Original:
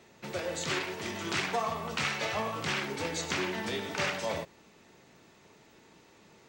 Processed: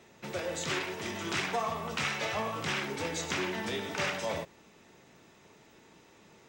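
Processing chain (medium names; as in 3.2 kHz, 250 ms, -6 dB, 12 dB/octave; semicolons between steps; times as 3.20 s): in parallel at -8.5 dB: saturation -31 dBFS, distortion -11 dB; on the sum: band-stop 4.4 kHz, Q 16; trim -2.5 dB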